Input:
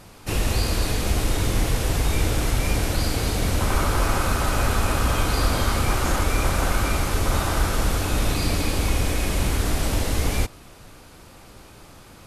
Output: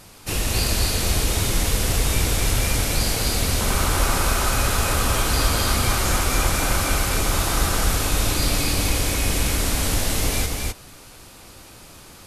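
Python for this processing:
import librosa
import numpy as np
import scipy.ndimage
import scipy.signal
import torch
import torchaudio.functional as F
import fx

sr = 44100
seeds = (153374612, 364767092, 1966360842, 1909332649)

p1 = fx.high_shelf(x, sr, hz=2700.0, db=8.0)
p2 = p1 + fx.echo_single(p1, sr, ms=260, db=-3.0, dry=0)
y = F.gain(torch.from_numpy(p2), -2.0).numpy()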